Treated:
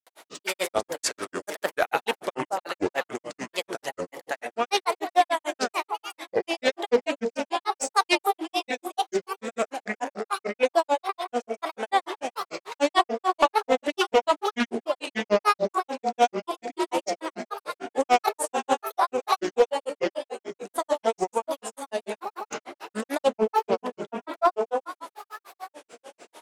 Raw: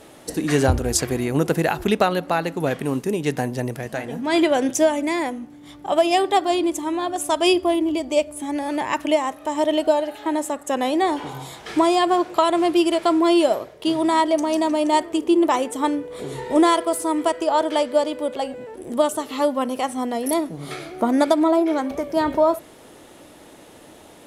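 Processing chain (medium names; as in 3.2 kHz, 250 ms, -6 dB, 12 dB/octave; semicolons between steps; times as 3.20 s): high-pass 640 Hz 12 dB/octave; echo whose repeats swap between lows and highs 214 ms, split 1 kHz, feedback 66%, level -5.5 dB; speed mistake 48 kHz file played as 44.1 kHz; granulator, grains 6.8 per s, pitch spread up and down by 7 st; hard clipper -13.5 dBFS, distortion -23 dB; loudspeaker Doppler distortion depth 0.3 ms; trim +3 dB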